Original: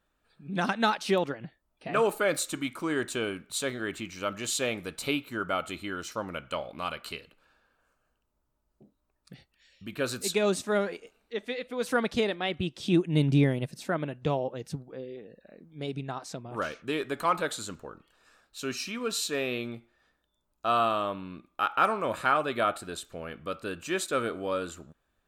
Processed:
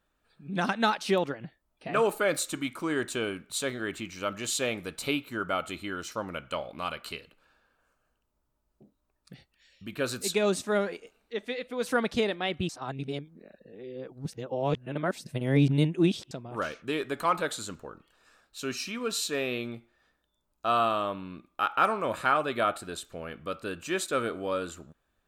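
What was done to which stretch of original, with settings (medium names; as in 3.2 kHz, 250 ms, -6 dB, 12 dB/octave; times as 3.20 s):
12.69–16.31 s: reverse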